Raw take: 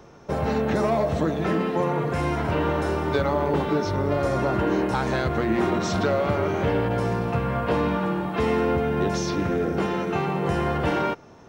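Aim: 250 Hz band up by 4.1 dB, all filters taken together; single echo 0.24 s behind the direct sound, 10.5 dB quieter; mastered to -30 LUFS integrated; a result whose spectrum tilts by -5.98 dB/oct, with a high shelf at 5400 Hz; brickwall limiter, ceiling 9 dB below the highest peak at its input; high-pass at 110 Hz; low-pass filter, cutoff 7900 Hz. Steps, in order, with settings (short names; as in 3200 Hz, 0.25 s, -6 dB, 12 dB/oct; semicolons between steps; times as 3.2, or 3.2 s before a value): HPF 110 Hz; LPF 7900 Hz; bell 250 Hz +6 dB; high shelf 5400 Hz +6.5 dB; limiter -17.5 dBFS; echo 0.24 s -10.5 dB; gain -4.5 dB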